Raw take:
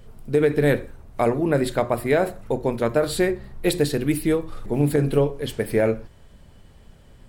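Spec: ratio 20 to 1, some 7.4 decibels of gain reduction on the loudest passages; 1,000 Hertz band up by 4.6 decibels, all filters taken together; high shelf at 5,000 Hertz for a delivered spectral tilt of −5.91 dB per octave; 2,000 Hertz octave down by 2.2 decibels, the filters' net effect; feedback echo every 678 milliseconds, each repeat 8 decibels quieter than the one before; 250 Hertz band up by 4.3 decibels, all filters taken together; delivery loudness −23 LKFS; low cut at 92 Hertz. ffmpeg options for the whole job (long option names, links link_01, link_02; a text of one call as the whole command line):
ffmpeg -i in.wav -af "highpass=92,equalizer=frequency=250:width_type=o:gain=5.5,equalizer=frequency=1000:width_type=o:gain=7.5,equalizer=frequency=2000:width_type=o:gain=-4.5,highshelf=frequency=5000:gain=-7.5,acompressor=threshold=-18dB:ratio=20,aecho=1:1:678|1356|2034|2712|3390:0.398|0.159|0.0637|0.0255|0.0102,volume=2dB" out.wav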